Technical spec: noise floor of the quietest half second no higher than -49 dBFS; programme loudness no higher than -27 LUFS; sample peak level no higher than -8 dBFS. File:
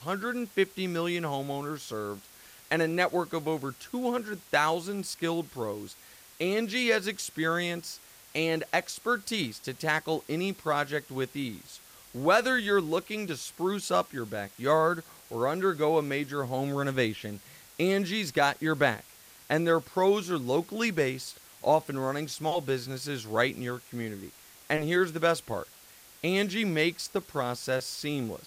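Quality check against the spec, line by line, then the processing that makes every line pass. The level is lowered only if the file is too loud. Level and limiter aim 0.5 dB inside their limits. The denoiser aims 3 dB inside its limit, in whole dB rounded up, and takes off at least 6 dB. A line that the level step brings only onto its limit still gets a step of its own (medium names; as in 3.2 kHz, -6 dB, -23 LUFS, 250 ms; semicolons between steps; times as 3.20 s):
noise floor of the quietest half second -54 dBFS: pass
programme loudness -29.5 LUFS: pass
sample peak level -12.0 dBFS: pass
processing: none needed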